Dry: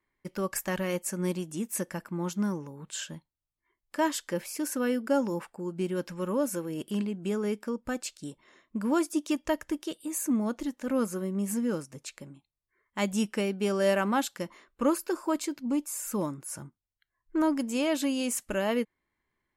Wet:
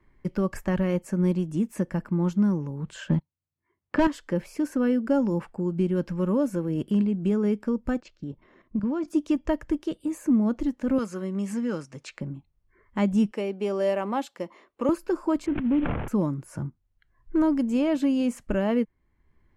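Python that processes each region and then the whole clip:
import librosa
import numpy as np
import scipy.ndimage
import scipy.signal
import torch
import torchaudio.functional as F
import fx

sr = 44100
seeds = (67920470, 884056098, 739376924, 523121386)

y = fx.chain(x, sr, fx.highpass(hz=89.0, slope=24),
    fx.leveller(passes=3),
    fx.env_lowpass(base_hz=2800.0, full_db=-19.5), at=(3.09, 4.07))
y = fx.chain(y, sr, fx.steep_lowpass(hz=6900.0, slope=36),
    fx.high_shelf(hz=4400.0, db=-10.5),
    fx.level_steps(step_db=11), at=(8.0, 9.08))
y = fx.chain(y, sr, fx.lowpass(hz=6100.0, slope=12),
    fx.tilt_eq(slope=4.0), at=(10.98, 12.21))
y = fx.chain(y, sr, fx.highpass(hz=420.0, slope=12),
    fx.peak_eq(hz=1500.0, db=-8.0, octaves=0.48), at=(13.31, 14.89))
y = fx.chain(y, sr, fx.cvsd(bps=16000),
    fx.sustainer(db_per_s=54.0), at=(15.46, 16.08))
y = fx.riaa(y, sr, side='playback')
y = fx.notch(y, sr, hz=3700.0, q=27.0)
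y = fx.band_squash(y, sr, depth_pct=40)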